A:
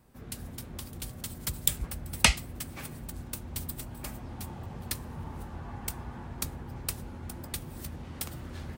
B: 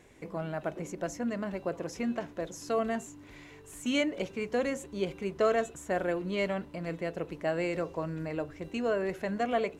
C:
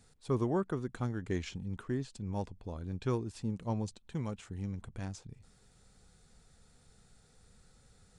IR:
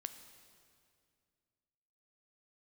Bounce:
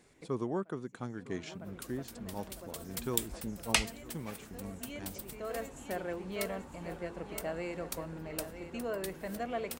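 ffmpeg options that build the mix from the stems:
-filter_complex "[0:a]equalizer=f=110:t=o:w=1.4:g=-15,adelay=1500,volume=0.501[s0];[1:a]volume=0.422,asplit=2[s1][s2];[s2]volume=0.316[s3];[2:a]highpass=160,volume=0.75,asplit=3[s4][s5][s6];[s5]volume=0.119[s7];[s6]apad=whole_len=431871[s8];[s1][s8]sidechaincompress=threshold=0.00141:ratio=12:attack=10:release=447[s9];[s3][s7]amix=inputs=2:normalize=0,aecho=0:1:956|1912|2868|3824|4780|5736:1|0.46|0.212|0.0973|0.0448|0.0206[s10];[s0][s9][s4][s10]amix=inputs=4:normalize=0"

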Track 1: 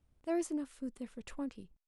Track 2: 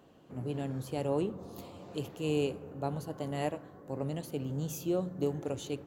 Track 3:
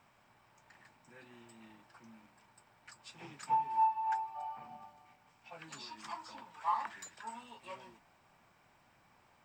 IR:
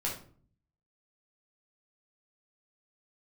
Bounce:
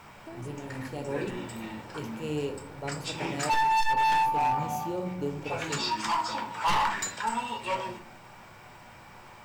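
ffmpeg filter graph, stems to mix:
-filter_complex "[0:a]acompressor=threshold=0.00501:ratio=6,volume=1.26,asplit=2[s0][s1];[1:a]volume=0.531,asplit=2[s2][s3];[s3]volume=0.562[s4];[2:a]aeval=exprs='0.0891*(cos(1*acos(clip(val(0)/0.0891,-1,1)))-cos(1*PI/2))+0.0251*(cos(2*acos(clip(val(0)/0.0891,-1,1)))-cos(2*PI/2))+0.0398*(cos(5*acos(clip(val(0)/0.0891,-1,1)))-cos(5*PI/2))':c=same,volume=1.26,asplit=2[s5][s6];[s6]volume=0.708[s7];[s1]apad=whole_len=258606[s8];[s2][s8]sidechaincompress=threshold=0.00282:ratio=8:attack=16:release=161[s9];[3:a]atrim=start_sample=2205[s10];[s4][s7]amix=inputs=2:normalize=0[s11];[s11][s10]afir=irnorm=-1:irlink=0[s12];[s0][s9][s5][s12]amix=inputs=4:normalize=0,volume=12.6,asoftclip=hard,volume=0.0794"

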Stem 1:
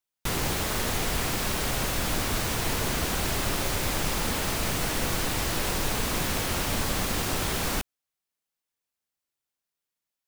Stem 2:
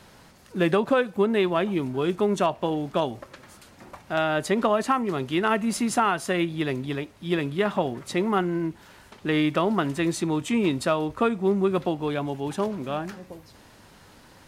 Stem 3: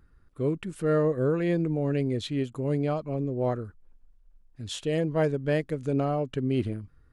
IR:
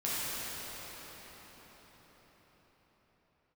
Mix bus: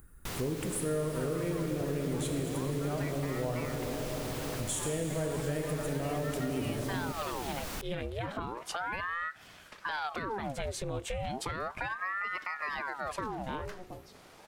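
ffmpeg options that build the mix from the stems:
-filter_complex "[0:a]volume=0.335[s0];[1:a]aeval=exprs='val(0)*sin(2*PI*910*n/s+910*0.8/0.34*sin(2*PI*0.34*n/s))':c=same,adelay=600,volume=0.944[s1];[2:a]acontrast=71,aexciter=amount=8.7:drive=6.4:freq=7100,volume=0.501,asplit=3[s2][s3][s4];[s3]volume=0.335[s5];[s4]apad=whole_len=664898[s6];[s1][s6]sidechaincompress=threshold=0.0282:ratio=8:attack=16:release=390[s7];[s7][s2]amix=inputs=2:normalize=0,alimiter=limit=0.0841:level=0:latency=1,volume=1[s8];[3:a]atrim=start_sample=2205[s9];[s5][s9]afir=irnorm=-1:irlink=0[s10];[s0][s8][s10]amix=inputs=3:normalize=0,acompressor=threshold=0.0224:ratio=3"

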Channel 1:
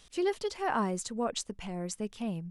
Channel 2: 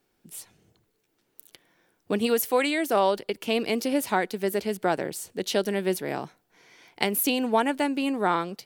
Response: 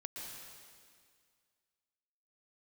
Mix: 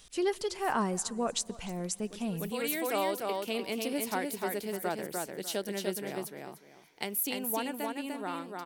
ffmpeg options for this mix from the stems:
-filter_complex "[0:a]volume=0.944,asplit=4[s0][s1][s2][s3];[s1]volume=0.0891[s4];[s2]volume=0.0944[s5];[1:a]dynaudnorm=f=630:g=5:m=1.78,volume=0.2,asplit=2[s6][s7];[s7]volume=0.668[s8];[s3]apad=whole_len=381763[s9];[s6][s9]sidechaincompress=threshold=0.00447:ratio=8:attack=6.5:release=312[s10];[2:a]atrim=start_sample=2205[s11];[s4][s11]afir=irnorm=-1:irlink=0[s12];[s5][s8]amix=inputs=2:normalize=0,aecho=0:1:298|596|894:1|0.21|0.0441[s13];[s0][s10][s12][s13]amix=inputs=4:normalize=0,highshelf=f=6900:g=8.5"

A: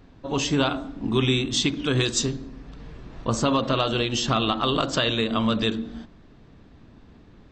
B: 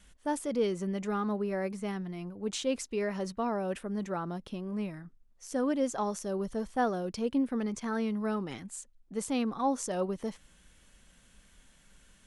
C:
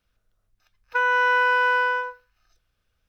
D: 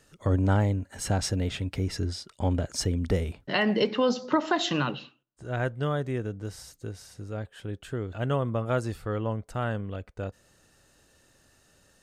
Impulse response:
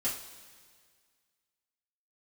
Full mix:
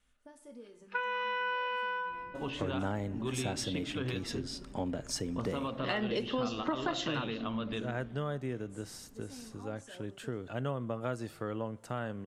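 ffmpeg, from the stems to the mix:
-filter_complex "[0:a]lowpass=f=3300:w=0.5412,lowpass=f=3300:w=1.3066,adelay=2100,volume=0.335[s0];[1:a]acompressor=threshold=0.02:ratio=4,volume=0.1,asplit=2[s1][s2];[s2]volume=0.562[s3];[2:a]lowpass=f=3500:w=0.5412,lowpass=f=3500:w=1.3066,aemphasis=mode=production:type=bsi,volume=0.501,asplit=2[s4][s5];[s5]volume=0.473[s6];[3:a]highpass=f=120:w=0.5412,highpass=f=120:w=1.3066,adelay=2350,volume=0.75,asplit=2[s7][s8];[s8]volume=0.0841[s9];[4:a]atrim=start_sample=2205[s10];[s3][s6][s9]amix=inputs=3:normalize=0[s11];[s11][s10]afir=irnorm=-1:irlink=0[s12];[s0][s1][s4][s7][s12]amix=inputs=5:normalize=0,acompressor=threshold=0.0178:ratio=2"

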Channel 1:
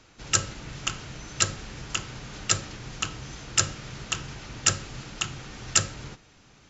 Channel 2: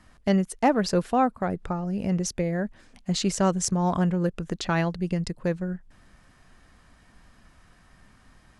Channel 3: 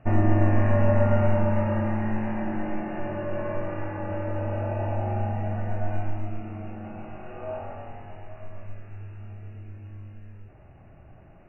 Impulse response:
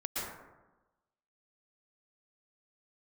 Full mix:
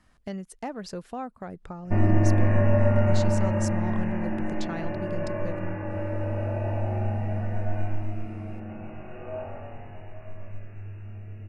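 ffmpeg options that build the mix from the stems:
-filter_complex "[1:a]acompressor=threshold=0.0355:ratio=2,volume=0.447[s0];[2:a]equalizer=f=125:t=o:w=0.33:g=3,equalizer=f=800:t=o:w=0.33:g=-5,equalizer=f=1250:t=o:w=0.33:g=-4,adelay=1850,volume=1[s1];[s0][s1]amix=inputs=2:normalize=0"

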